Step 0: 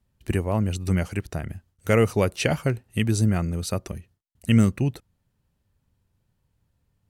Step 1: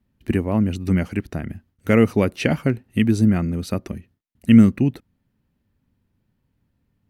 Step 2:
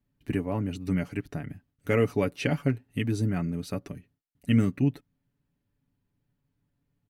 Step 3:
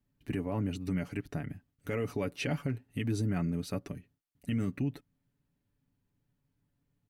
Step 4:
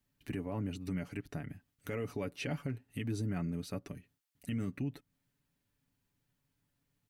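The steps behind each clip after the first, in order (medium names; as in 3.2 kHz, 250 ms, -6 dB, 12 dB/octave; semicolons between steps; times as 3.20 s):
graphic EQ 250/2000/8000 Hz +11/+4/-7 dB; trim -1 dB
comb 7 ms, depth 62%; trim -8.5 dB
peak limiter -21.5 dBFS, peak gain reduction 10 dB; trim -1.5 dB
tape noise reduction on one side only encoder only; trim -4.5 dB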